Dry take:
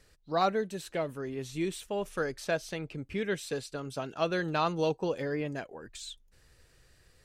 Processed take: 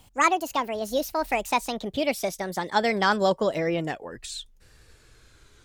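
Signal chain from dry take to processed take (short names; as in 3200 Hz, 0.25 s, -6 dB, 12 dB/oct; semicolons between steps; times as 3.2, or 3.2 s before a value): speed glide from 176% -> 81%; gain +7 dB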